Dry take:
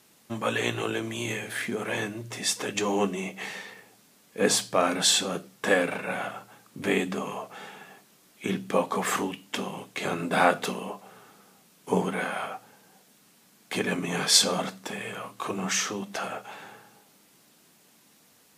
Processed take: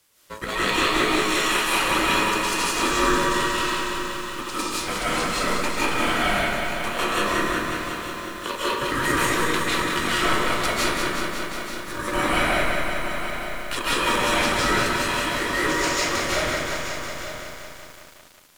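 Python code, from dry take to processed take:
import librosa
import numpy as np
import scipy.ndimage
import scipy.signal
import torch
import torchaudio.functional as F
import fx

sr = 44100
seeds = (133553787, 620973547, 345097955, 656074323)

y = fx.law_mismatch(x, sr, coded='A')
y = fx.highpass(y, sr, hz=420.0, slope=6)
y = fx.high_shelf(y, sr, hz=3500.0, db=3.0)
y = fx.over_compress(y, sr, threshold_db=-30.0, ratio=-0.5)
y = y * np.sin(2.0 * np.pi * 760.0 * np.arange(len(y)) / sr)
y = y + 10.0 ** (-13.0 / 20.0) * np.pad(y, (int(881 * sr / 1000.0), 0))[:len(y)]
y = fx.rev_freeverb(y, sr, rt60_s=0.98, hf_ratio=0.6, predelay_ms=115, drr_db=-7.5)
y = fx.echo_crushed(y, sr, ms=183, feedback_pct=80, bits=8, wet_db=-6.0)
y = F.gain(torch.from_numpy(y), 3.0).numpy()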